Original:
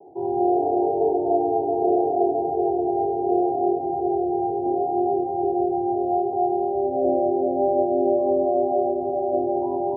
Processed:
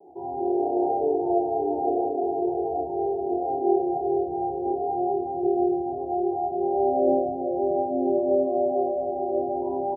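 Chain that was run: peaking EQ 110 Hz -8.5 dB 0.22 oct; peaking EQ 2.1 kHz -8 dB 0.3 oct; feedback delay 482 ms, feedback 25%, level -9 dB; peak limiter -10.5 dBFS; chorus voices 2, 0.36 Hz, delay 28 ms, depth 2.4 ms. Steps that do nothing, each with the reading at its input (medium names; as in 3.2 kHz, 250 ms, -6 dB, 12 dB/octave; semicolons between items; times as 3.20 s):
peaking EQ 2.1 kHz: input has nothing above 810 Hz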